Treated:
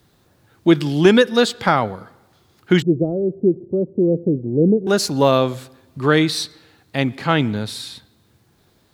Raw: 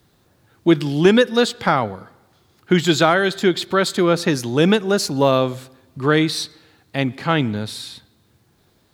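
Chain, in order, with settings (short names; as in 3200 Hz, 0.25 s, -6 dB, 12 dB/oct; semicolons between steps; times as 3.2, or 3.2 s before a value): 2.82–4.87 steep low-pass 510 Hz 36 dB/oct; gain +1 dB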